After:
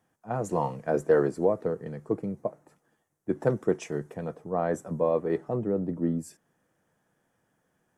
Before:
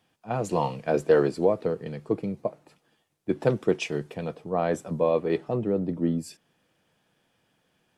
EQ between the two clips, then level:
flat-topped bell 3,400 Hz −11.5 dB 1.3 octaves
−2.0 dB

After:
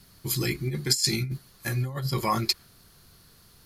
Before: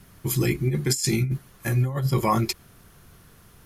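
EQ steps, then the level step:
parametric band 4,400 Hz +13 dB 0.47 octaves
dynamic equaliser 1,600 Hz, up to +5 dB, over −39 dBFS, Q 1
high-shelf EQ 6,300 Hz +6 dB
−6.0 dB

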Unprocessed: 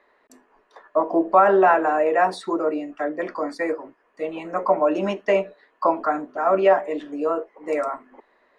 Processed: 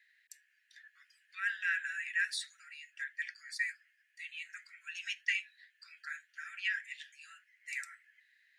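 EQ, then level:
Butterworth high-pass 1,600 Hz 96 dB per octave
high-shelf EQ 4,600 Hz +6 dB
−3.0 dB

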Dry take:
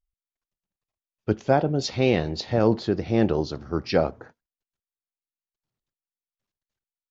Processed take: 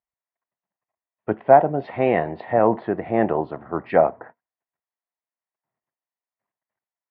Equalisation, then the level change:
high-frequency loss of the air 300 metres
loudspeaker in its box 140–2,900 Hz, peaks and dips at 680 Hz +8 dB, 1,000 Hz +6 dB, 1,900 Hz +10 dB
parametric band 860 Hz +6.5 dB 1.6 octaves
−1.5 dB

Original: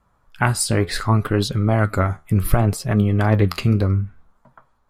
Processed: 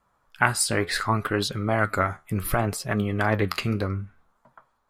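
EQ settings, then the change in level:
dynamic equaliser 1,700 Hz, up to +4 dB, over −37 dBFS, Q 1.3
low-shelf EQ 120 Hz −5 dB
low-shelf EQ 310 Hz −6.5 dB
−2.0 dB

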